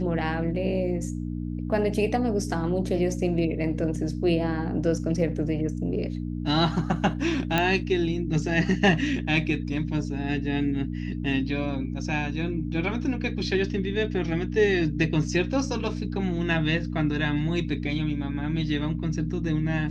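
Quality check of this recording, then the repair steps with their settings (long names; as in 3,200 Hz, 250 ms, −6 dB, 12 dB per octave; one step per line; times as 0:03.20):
mains hum 60 Hz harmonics 5 −31 dBFS
0:07.58: click −9 dBFS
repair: click removal
hum removal 60 Hz, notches 5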